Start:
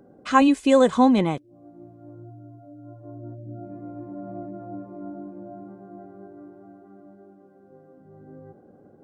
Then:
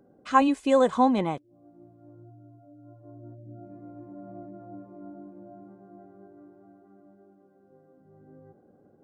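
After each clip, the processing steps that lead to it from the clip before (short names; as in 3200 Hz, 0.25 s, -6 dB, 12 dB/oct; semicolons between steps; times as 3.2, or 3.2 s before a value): dynamic EQ 860 Hz, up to +6 dB, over -32 dBFS, Q 0.85; gain -7 dB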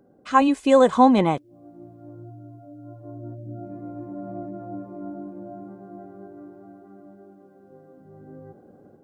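AGC gain up to 7 dB; gain +1.5 dB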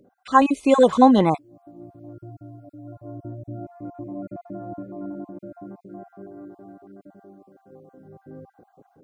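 random spectral dropouts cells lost 27%; gain +2 dB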